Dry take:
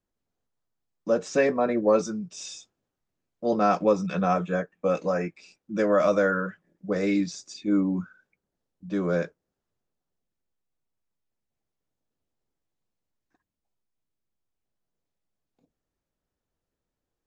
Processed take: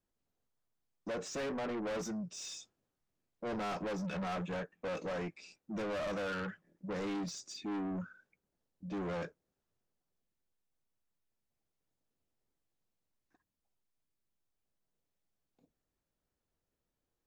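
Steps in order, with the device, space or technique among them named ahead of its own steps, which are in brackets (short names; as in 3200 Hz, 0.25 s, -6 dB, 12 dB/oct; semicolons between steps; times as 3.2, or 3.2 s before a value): saturation between pre-emphasis and de-emphasis (high shelf 6900 Hz +11.5 dB; soft clip -33 dBFS, distortion -4 dB; high shelf 6900 Hz -11.5 dB); gain -2.5 dB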